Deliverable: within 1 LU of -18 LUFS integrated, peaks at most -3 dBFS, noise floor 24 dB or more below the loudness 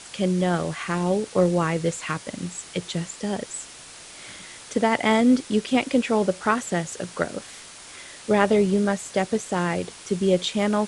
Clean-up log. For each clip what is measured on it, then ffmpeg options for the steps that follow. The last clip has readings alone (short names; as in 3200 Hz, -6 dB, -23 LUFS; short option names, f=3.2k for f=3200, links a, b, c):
noise floor -44 dBFS; noise floor target -48 dBFS; loudness -24.0 LUFS; peak -4.5 dBFS; loudness target -18.0 LUFS
-> -af "afftdn=nr=6:nf=-44"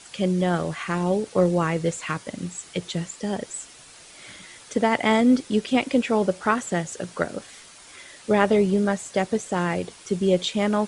noise floor -47 dBFS; noise floor target -48 dBFS
-> -af "afftdn=nr=6:nf=-47"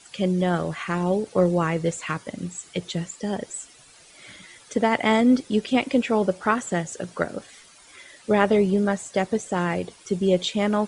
noise floor -51 dBFS; loudness -24.0 LUFS; peak -4.5 dBFS; loudness target -18.0 LUFS
-> -af "volume=6dB,alimiter=limit=-3dB:level=0:latency=1"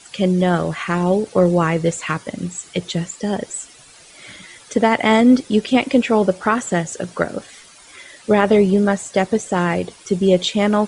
loudness -18.0 LUFS; peak -3.0 dBFS; noise floor -45 dBFS